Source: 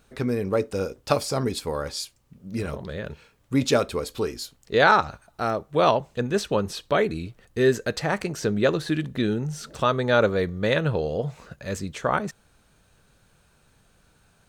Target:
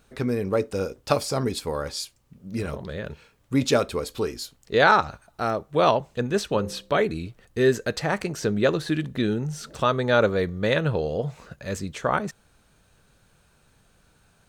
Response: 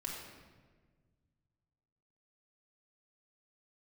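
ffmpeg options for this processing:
-filter_complex "[0:a]asettb=1/sr,asplit=3[a][b][c];[a]atrim=end=6.494[d];[b]atrim=start=6.49:end=7.01,asetpts=PTS-STARTPTS,afade=t=in:d=0.004:c=qsin,afade=t=out:st=0.516:d=0.004:c=qsin,bandreject=f=64.85:t=h:w=4,bandreject=f=129.7:t=h:w=4,bandreject=f=194.55:t=h:w=4,bandreject=f=259.4:t=h:w=4,bandreject=f=324.25:t=h:w=4,bandreject=f=389.1:t=h:w=4,bandreject=f=453.95:t=h:w=4,bandreject=f=518.8:t=h:w=4,bandreject=f=583.65:t=h:w=4,bandreject=f=648.5:t=h:w=4[e];[c]atrim=start=7.006[f];[d][e]acrossfade=d=0.004:c1=hsin:c2=qsin[g];[g][f]acrossfade=d=0.004:c1=qsin:c2=hsin"

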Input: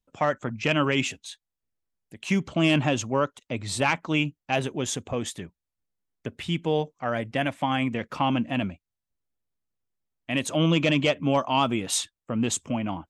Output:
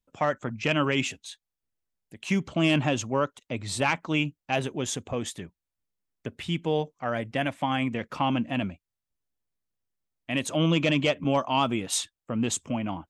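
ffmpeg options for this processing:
-filter_complex "[0:a]asettb=1/sr,asplit=3[a][b][c];[a]atrim=end=11.244[d];[b]atrim=start=11.24:end=11.93,asetpts=PTS-STARTPTS,afade=t=in:d=0.004:c=qsin,afade=t=out:st=0.686:d=0.004:c=qsin,agate=range=-33dB:threshold=-29dB:ratio=3:detection=peak[e];[c]atrim=start=11.926[f];[d][e]acrossfade=d=0.004:c1=hsin:c2=qsin[g];[g][f]acrossfade=d=0.004:c1=qsin:c2=hsin,volume=-1.5dB"

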